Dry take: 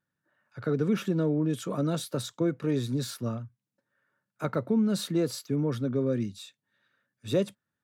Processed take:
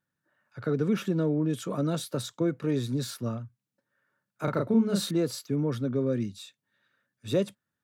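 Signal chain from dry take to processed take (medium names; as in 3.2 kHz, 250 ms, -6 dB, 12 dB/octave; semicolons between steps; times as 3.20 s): 4.44–5.11 s: doubling 35 ms -2 dB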